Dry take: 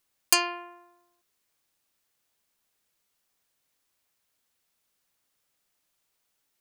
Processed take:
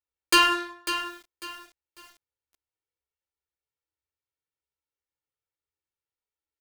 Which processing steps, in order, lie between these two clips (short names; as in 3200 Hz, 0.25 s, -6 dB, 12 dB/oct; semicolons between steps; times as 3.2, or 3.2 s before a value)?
LPF 2200 Hz 6 dB/oct; notches 50/100/150/200/250/300/350 Hz; comb 2.2 ms, depth 83%; sample leveller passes 5; flange 0.62 Hz, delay 3.4 ms, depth 6.9 ms, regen -36%; added harmonics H 2 -32 dB, 3 -18 dB, 5 -37 dB, 7 -35 dB, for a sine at -10 dBFS; feedback echo 98 ms, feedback 28%, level -19.5 dB; on a send at -5 dB: reverb RT60 0.50 s, pre-delay 3 ms; on the sum: lo-fi delay 0.547 s, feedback 35%, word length 7-bit, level -10 dB